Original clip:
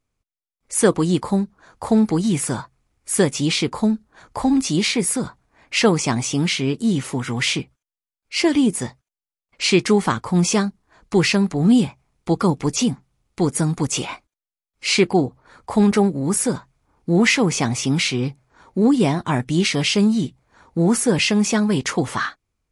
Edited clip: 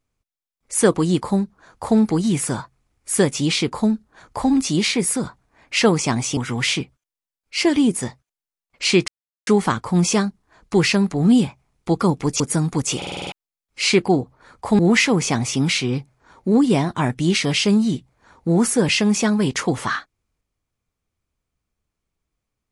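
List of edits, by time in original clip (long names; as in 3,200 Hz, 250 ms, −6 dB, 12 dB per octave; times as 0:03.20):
0:06.37–0:07.16: remove
0:09.87: splice in silence 0.39 s
0:12.80–0:13.45: remove
0:14.02: stutter in place 0.05 s, 7 plays
0:15.84–0:17.09: remove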